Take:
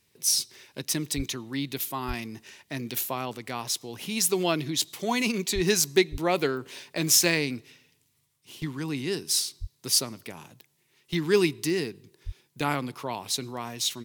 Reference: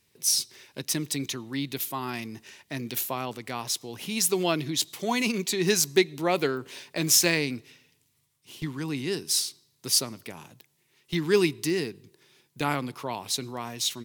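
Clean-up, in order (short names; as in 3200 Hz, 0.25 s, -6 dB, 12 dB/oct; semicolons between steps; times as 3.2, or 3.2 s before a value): de-plosive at 1.16/2.07/5.54/6.11/9.6/12.25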